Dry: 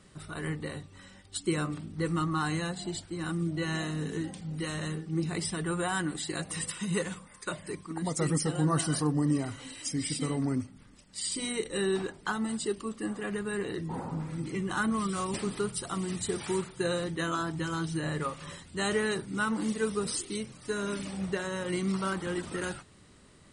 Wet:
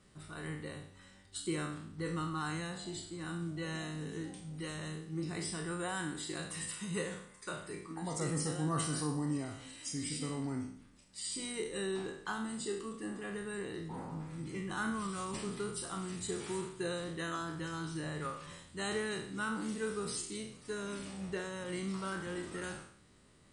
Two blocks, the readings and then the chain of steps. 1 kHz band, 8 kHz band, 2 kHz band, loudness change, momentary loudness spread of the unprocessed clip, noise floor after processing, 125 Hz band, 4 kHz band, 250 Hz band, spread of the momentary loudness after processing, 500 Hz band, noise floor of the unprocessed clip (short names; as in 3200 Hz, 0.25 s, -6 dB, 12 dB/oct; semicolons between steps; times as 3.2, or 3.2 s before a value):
-6.5 dB, -5.5 dB, -6.0 dB, -7.0 dB, 9 LU, -60 dBFS, -7.5 dB, -6.0 dB, -7.5 dB, 8 LU, -7.0 dB, -56 dBFS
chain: spectral trails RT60 0.62 s; gain -8.5 dB